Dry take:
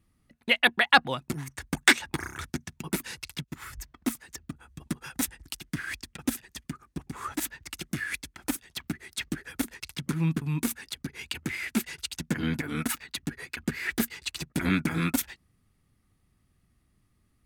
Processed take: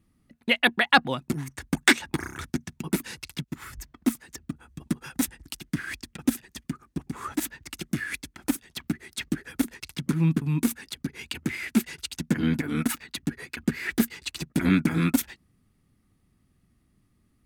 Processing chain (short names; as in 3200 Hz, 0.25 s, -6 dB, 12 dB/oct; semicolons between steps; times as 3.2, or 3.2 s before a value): bell 240 Hz +6 dB 1.6 oct